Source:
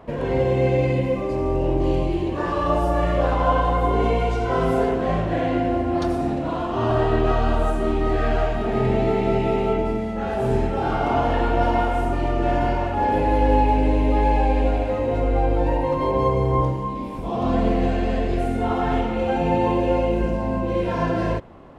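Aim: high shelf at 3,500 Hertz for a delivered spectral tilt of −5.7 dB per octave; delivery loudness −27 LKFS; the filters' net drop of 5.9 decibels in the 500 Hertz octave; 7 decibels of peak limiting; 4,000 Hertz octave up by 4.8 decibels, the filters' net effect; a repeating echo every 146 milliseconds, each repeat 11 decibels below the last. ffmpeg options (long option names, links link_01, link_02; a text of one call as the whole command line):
ffmpeg -i in.wav -af "equalizer=frequency=500:width_type=o:gain=-8,highshelf=frequency=3500:gain=3,equalizer=frequency=4000:width_type=o:gain=5,alimiter=limit=-15dB:level=0:latency=1,aecho=1:1:146|292|438:0.282|0.0789|0.0221,volume=-2dB" out.wav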